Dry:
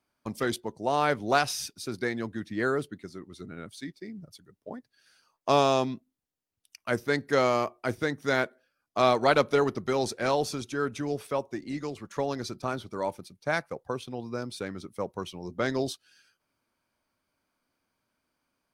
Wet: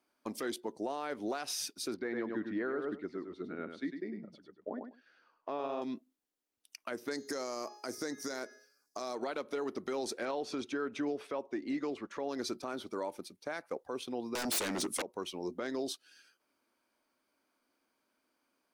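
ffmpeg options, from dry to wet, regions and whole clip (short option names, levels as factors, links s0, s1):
-filter_complex "[0:a]asettb=1/sr,asplit=3[s0][s1][s2];[s0]atrim=end=1.944[s3];[s1]atrim=start=1.94:end=5.82,asetpts=PTS-STARTPTS,afade=t=in:d=0.004:c=qsin,afade=t=out:st=3.876:d=0.004:c=qsin,lowpass=2200,aecho=1:1:101|202:0.422|0.0633,atrim=end_sample=171108[s4];[s2]atrim=start=5.816[s5];[s3][s4]acrossfade=d=0.004:c1=hsin:c2=qsin[s6];[s6][s5]acrossfade=d=0.004:c1=qsin:c2=hsin,asettb=1/sr,asplit=3[s7][s8][s9];[s7]atrim=end=7.114[s10];[s8]atrim=start=7.11:end=9.15,asetpts=PTS-STARTPTS,afade=t=in:d=0.004:c=qsin,afade=t=out:st=2.036:d=0.004:c=qsin,highshelf=f=4100:t=q:w=3:g=9,bandreject=f=418.5:t=h:w=4,bandreject=f=837:t=h:w=4,bandreject=f=1255.5:t=h:w=4,bandreject=f=1674:t=h:w=4,bandreject=f=2092.5:t=h:w=4,bandreject=f=2511:t=h:w=4,bandreject=f=2929.5:t=h:w=4,bandreject=f=3348:t=h:w=4,bandreject=f=3766.5:t=h:w=4,bandreject=f=4185:t=h:w=4,bandreject=f=4603.5:t=h:w=4,bandreject=f=5022:t=h:w=4,bandreject=f=5440.5:t=h:w=4,bandreject=f=5859:t=h:w=4,bandreject=f=6277.5:t=h:w=4,bandreject=f=6696:t=h:w=4[s11];[s9]atrim=start=9.146[s12];[s10][s11]acrossfade=d=0.004:c1=hsin:c2=qsin[s13];[s13][s12]acrossfade=d=0.004:c1=qsin:c2=hsin,asettb=1/sr,asplit=3[s14][s15][s16];[s14]atrim=end=10.254[s17];[s15]atrim=start=10.25:end=12.29,asetpts=PTS-STARTPTS,afade=t=in:d=0.004:c=qsin,afade=t=out:st=2.036:d=0.004:c=qsin,lowpass=2800,aemphasis=mode=production:type=50fm[s18];[s16]atrim=start=12.286[s19];[s17][s18]acrossfade=d=0.004:c1=hsin:c2=qsin[s20];[s20][s19]acrossfade=d=0.004:c1=qsin:c2=hsin,asettb=1/sr,asplit=3[s21][s22][s23];[s21]atrim=end=14.354[s24];[s22]atrim=start=14.35:end=15.02,asetpts=PTS-STARTPTS,afade=t=in:d=0.004:c=qsin,afade=t=out:st=0.666:d=0.004:c=qsin,equalizer=f=8100:w=0.74:g=12.5,aeval=exprs='0.141*sin(PI/2*7.94*val(0)/0.141)':c=same[s25];[s23]atrim=start=15.016[s26];[s24][s25]acrossfade=d=0.004:c1=hsin:c2=qsin[s27];[s27][s26]acrossfade=d=0.004:c1=qsin:c2=hsin,lowshelf=f=190:t=q:w=1.5:g=-12.5,acompressor=threshold=0.0398:ratio=6,alimiter=level_in=1.41:limit=0.0631:level=0:latency=1:release=85,volume=0.708"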